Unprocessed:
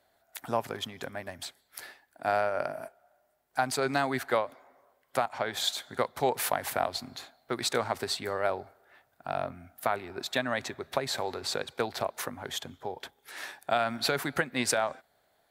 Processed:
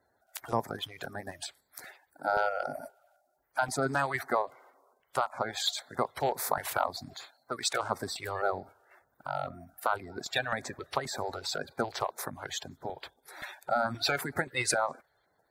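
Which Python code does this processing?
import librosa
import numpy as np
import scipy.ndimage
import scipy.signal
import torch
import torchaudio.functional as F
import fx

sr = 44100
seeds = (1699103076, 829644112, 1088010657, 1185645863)

p1 = fx.spec_quant(x, sr, step_db=30)
p2 = fx.level_steps(p1, sr, step_db=10)
p3 = p1 + (p2 * 10.0 ** (-0.5 / 20.0))
p4 = fx.filter_lfo_notch(p3, sr, shape='square', hz=1.9, low_hz=220.0, high_hz=2900.0, q=0.88)
p5 = fx.low_shelf(p4, sr, hz=290.0, db=-11.5, at=(7.14, 7.83))
y = p5 * 10.0 ** (-4.0 / 20.0)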